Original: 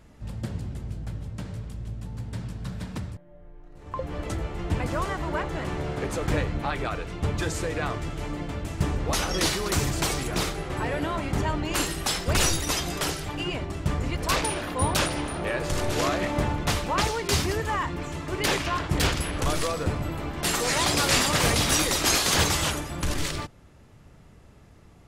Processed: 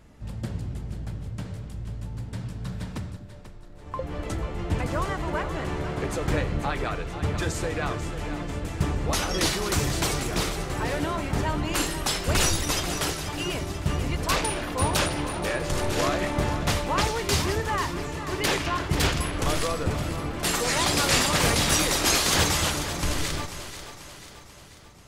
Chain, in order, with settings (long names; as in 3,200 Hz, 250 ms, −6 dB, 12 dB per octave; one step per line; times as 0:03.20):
echo with a time of its own for lows and highs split 330 Hz, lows 242 ms, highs 489 ms, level −11 dB